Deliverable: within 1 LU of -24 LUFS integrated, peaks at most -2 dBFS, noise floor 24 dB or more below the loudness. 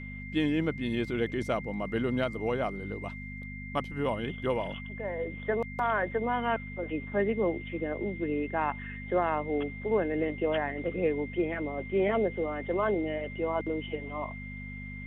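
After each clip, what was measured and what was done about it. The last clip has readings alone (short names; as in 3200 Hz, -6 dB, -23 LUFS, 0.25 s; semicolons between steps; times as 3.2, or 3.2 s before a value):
hum 50 Hz; harmonics up to 250 Hz; hum level -39 dBFS; steady tone 2100 Hz; tone level -43 dBFS; loudness -31.5 LUFS; peak -14.5 dBFS; loudness target -24.0 LUFS
-> de-hum 50 Hz, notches 5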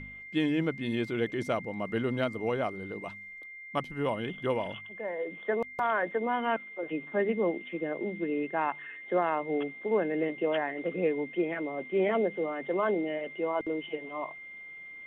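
hum none; steady tone 2100 Hz; tone level -43 dBFS
-> notch 2100 Hz, Q 30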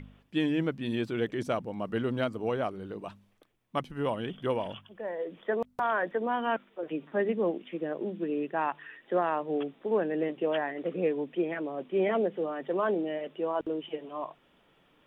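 steady tone none; loudness -32.0 LUFS; peak -14.5 dBFS; loudness target -24.0 LUFS
-> gain +8 dB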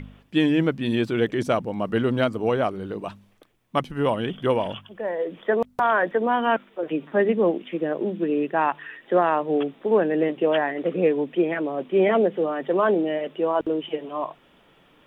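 loudness -24.0 LUFS; peak -6.5 dBFS; noise floor -58 dBFS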